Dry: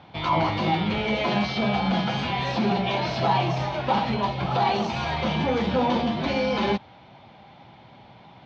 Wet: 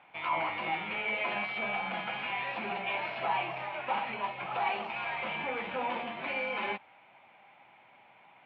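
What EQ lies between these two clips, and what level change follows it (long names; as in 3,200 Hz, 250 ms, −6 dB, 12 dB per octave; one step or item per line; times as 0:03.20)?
high-pass filter 380 Hz 6 dB per octave
transistor ladder low-pass 2,800 Hz, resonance 60%
parametric band 1,100 Hz +8 dB 2.9 octaves
−5.5 dB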